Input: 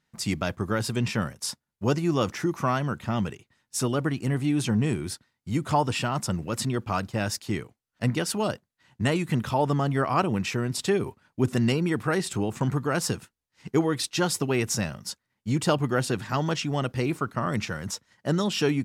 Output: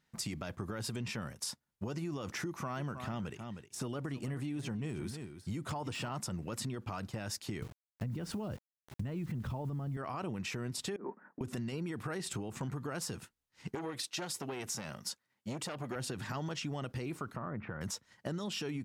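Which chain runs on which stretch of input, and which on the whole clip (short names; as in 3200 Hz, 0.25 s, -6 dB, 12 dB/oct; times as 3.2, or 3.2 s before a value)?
2.46–6.1 de-esser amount 80% + echo 0.312 s -16 dB
7.62–9.97 RIAA curve playback + requantised 8-bit, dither none
10.96–11.41 Chebyshev band-pass 190–1800 Hz, order 4 + negative-ratio compressor -38 dBFS
13.75–15.96 HPF 240 Hz 6 dB/oct + core saturation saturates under 1600 Hz
17.36–17.81 LPF 1700 Hz 24 dB/oct + compressor 3:1, threshold -34 dBFS
whole clip: limiter -21.5 dBFS; compressor, threshold -34 dBFS; gain -1.5 dB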